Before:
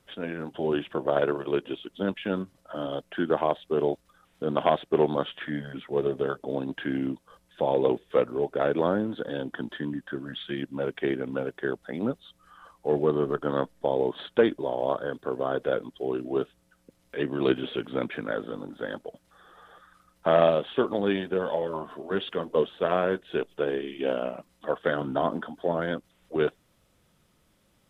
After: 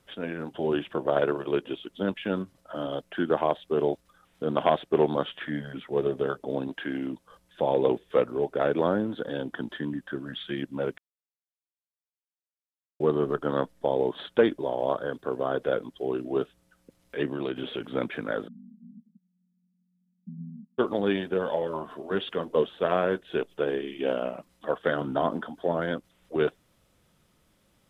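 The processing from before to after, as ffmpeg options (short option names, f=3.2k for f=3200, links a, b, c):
-filter_complex "[0:a]asettb=1/sr,asplit=3[a][b][c];[a]atrim=end=6.684[d];[b]atrim=start=6.68:end=7.13,asetpts=PTS-STARTPTS,afade=t=in:d=0.004:c=qsin,afade=t=out:st=0.446:d=0.004:c=qsin,equalizer=f=87:w=0.52:g=-9.5[e];[c]atrim=start=7.126[f];[d][e]acrossfade=d=0.004:c1=hsin:c2=qsin[g];[g][f]acrossfade=d=0.004:c1=qsin:c2=hsin,asettb=1/sr,asplit=3[h][i][j];[h]atrim=end=17.304[k];[i]atrim=start=17.3:end=17.81,asetpts=PTS-STARTPTS,afade=t=in:d=0.004:c=qsin,afade=t=out:st=0.506:d=0.004:c=qsin,acompressor=threshold=-27dB:ratio=4:attack=3.2:release=140:knee=1:detection=peak[l];[j]atrim=start=17.806[m];[k][l]acrossfade=d=0.004:c1=hsin:c2=qsin[n];[n][m]acrossfade=d=0.004:c1=qsin:c2=hsin,asplit=3[o][p][q];[o]afade=t=out:st=18.47:d=0.02[r];[p]asuperpass=centerf=200:order=8:qfactor=3,afade=t=in:st=18.47:d=0.02,afade=t=out:st=20.78:d=0.02[s];[q]afade=t=in:st=20.78:d=0.02[t];[r][s][t]amix=inputs=3:normalize=0,asplit=3[u][v][w];[u]atrim=end=10.98,asetpts=PTS-STARTPTS,afade=t=out:st=10.976:d=0.004:c=hsin[x];[v]atrim=start=10.98:end=13,asetpts=PTS-STARTPTS,volume=0[y];[w]atrim=start=13,asetpts=PTS-STARTPTS,afade=t=in:d=0.004:c=hsin[z];[x][y][z]concat=n=3:v=0:a=1"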